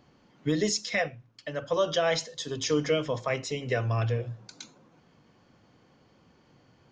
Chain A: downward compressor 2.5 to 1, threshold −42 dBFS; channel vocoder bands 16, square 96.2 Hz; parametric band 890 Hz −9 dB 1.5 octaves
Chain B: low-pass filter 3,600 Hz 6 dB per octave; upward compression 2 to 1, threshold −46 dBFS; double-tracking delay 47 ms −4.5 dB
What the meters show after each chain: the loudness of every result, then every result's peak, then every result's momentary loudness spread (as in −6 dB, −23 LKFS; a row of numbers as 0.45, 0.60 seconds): −44.0, −28.5 LKFS; −28.5, −12.5 dBFS; 16, 12 LU